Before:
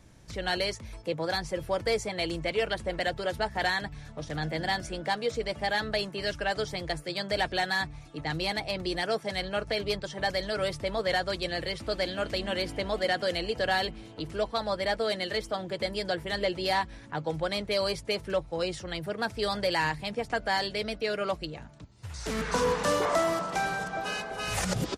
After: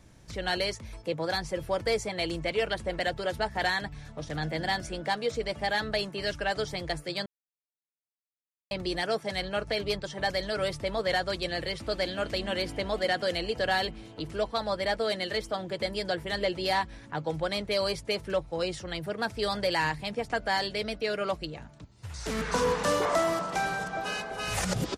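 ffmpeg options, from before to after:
-filter_complex "[0:a]asplit=3[a][b][c];[a]atrim=end=7.26,asetpts=PTS-STARTPTS,afade=t=out:st=7.256:d=0.004:c=hsin[d];[b]atrim=start=7.26:end=8.71,asetpts=PTS-STARTPTS,volume=0[e];[c]atrim=start=8.71,asetpts=PTS-STARTPTS,afade=t=in:d=0.004:c=hsin[f];[d][e][f]concat=n=3:v=0:a=1"

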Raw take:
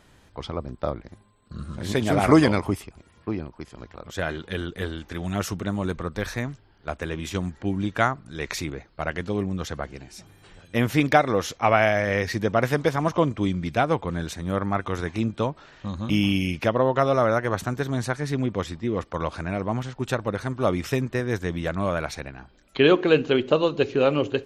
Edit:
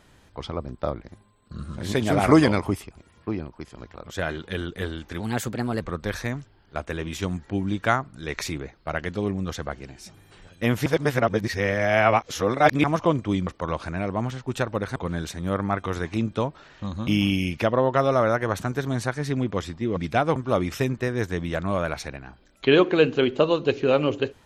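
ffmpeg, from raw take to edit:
-filter_complex "[0:a]asplit=9[a][b][c][d][e][f][g][h][i];[a]atrim=end=5.204[j];[b]atrim=start=5.2:end=5.93,asetpts=PTS-STARTPTS,asetrate=52920,aresample=44100[k];[c]atrim=start=5.926:end=10.982[l];[d]atrim=start=10.978:end=12.962,asetpts=PTS-STARTPTS,areverse[m];[e]atrim=start=12.958:end=13.592[n];[f]atrim=start=18.988:end=20.482[o];[g]atrim=start=13.978:end=18.992[p];[h]atrim=start=13.588:end=13.982[q];[i]atrim=start=20.478[r];[j][k]acrossfade=d=0.004:c1=hsin:c2=hsin[s];[s][l]acrossfade=d=0.004:c1=hsin:c2=hsin[t];[t][m]acrossfade=d=0.004:c1=hsin:c2=hsin[u];[u][n]acrossfade=d=0.004:c1=hsin:c2=hsin[v];[v][o]acrossfade=d=0.004:c1=hsin:c2=hsin[w];[w][p]acrossfade=d=0.004:c1=hsin:c2=hsin[x];[x][q]acrossfade=d=0.004:c1=hsin:c2=hsin[y];[y][r]acrossfade=d=0.004:c1=hsin:c2=hsin"

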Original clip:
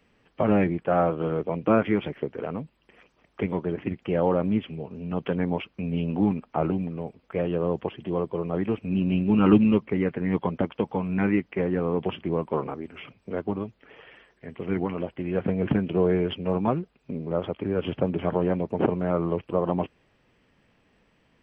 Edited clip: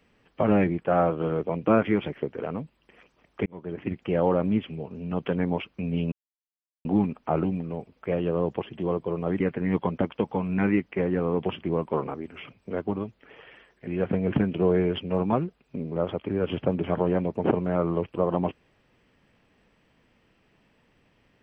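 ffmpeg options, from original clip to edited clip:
-filter_complex "[0:a]asplit=5[a][b][c][d][e];[a]atrim=end=3.46,asetpts=PTS-STARTPTS,afade=t=out:st=3.456:d=0.004:c=hsin[f];[b]atrim=start=3.46:end=6.12,asetpts=PTS-STARTPTS,afade=t=in:d=0.47,afade=t=out:st=2.656:d=0.004:c=hsin,apad=pad_dur=0.73[g];[c]atrim=start=6.12:end=8.672,asetpts=PTS-STARTPTS,afade=t=in:d=0.004:c=hsin[h];[d]atrim=start=9.998:end=14.472[i];[e]atrim=start=15.218[j];[f][g][h]concat=n=3:v=0:a=1[k];[k][i]acrossfade=d=0.004:c1=hsin:c2=hsin[l];[l][j]acrossfade=d=0.004:c1=hsin:c2=hsin"

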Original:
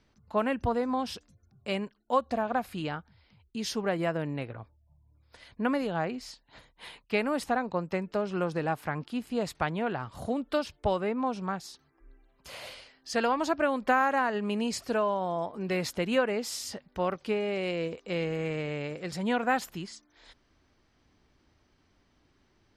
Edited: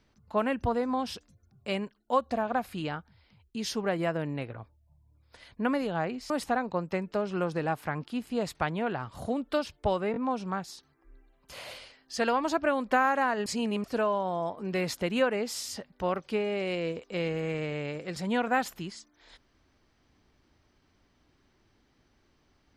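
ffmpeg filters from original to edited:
-filter_complex "[0:a]asplit=6[a][b][c][d][e][f];[a]atrim=end=6.302[g];[b]atrim=start=7.298:end=11.142[h];[c]atrim=start=11.118:end=11.142[i];[d]atrim=start=11.118:end=14.422[j];[e]atrim=start=14.418:end=14.802,asetpts=PTS-STARTPTS,areverse[k];[f]atrim=start=14.798[l];[g][h]acrossfade=d=0.004:c1=hsin:c2=hsin[m];[m][i]acrossfade=d=0.004:c1=hsin:c2=hsin[n];[n][j]acrossfade=d=0.004:c1=hsin:c2=hsin[o];[o][k]acrossfade=d=0.004:c1=hsin:c2=hsin[p];[p][l]acrossfade=d=0.004:c1=hsin:c2=hsin"

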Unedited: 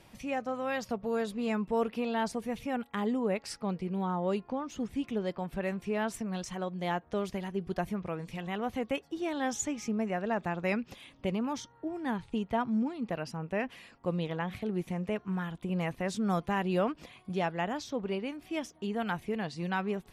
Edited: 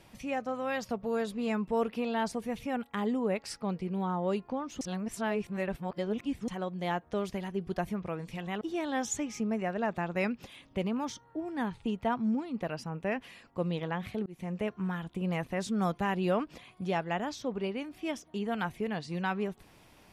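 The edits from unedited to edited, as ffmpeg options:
-filter_complex "[0:a]asplit=5[a][b][c][d][e];[a]atrim=end=4.812[f];[b]atrim=start=4.808:end=6.482,asetpts=PTS-STARTPTS,areverse[g];[c]atrim=start=6.478:end=8.612[h];[d]atrim=start=9.088:end=14.74,asetpts=PTS-STARTPTS,afade=t=out:st=5.648:d=0.004:c=hsin[i];[e]atrim=start=14.74,asetpts=PTS-STARTPTS,afade=t=in:d=0.38:c=qsin[j];[f][g]acrossfade=d=0.004:c1=hsin:c2=hsin[k];[k][h]acrossfade=d=0.004:c1=hsin:c2=hsin[l];[i][j]concat=n=2:v=0:a=1[m];[l][m]acrossfade=d=0.004:c1=hsin:c2=hsin"

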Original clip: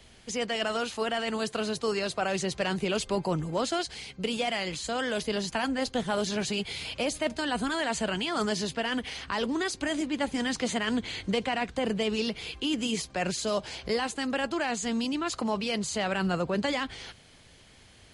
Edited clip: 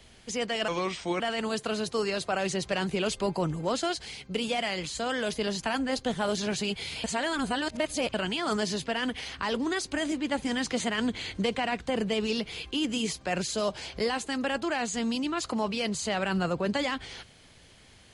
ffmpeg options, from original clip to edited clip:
-filter_complex "[0:a]asplit=5[a][b][c][d][e];[a]atrim=end=0.684[f];[b]atrim=start=0.68:end=1.09,asetpts=PTS-STARTPTS,asetrate=34839,aresample=44100,atrim=end_sample=22887,asetpts=PTS-STARTPTS[g];[c]atrim=start=1.086:end=6.932[h];[d]atrim=start=6.928:end=8.032,asetpts=PTS-STARTPTS,areverse[i];[e]atrim=start=8.028[j];[f][g]acrossfade=d=0.004:c1=hsin:c2=hsin[k];[k][h]acrossfade=d=0.004:c1=hsin:c2=hsin[l];[l][i]acrossfade=d=0.004:c1=hsin:c2=hsin[m];[m][j]acrossfade=d=0.004:c1=hsin:c2=hsin"

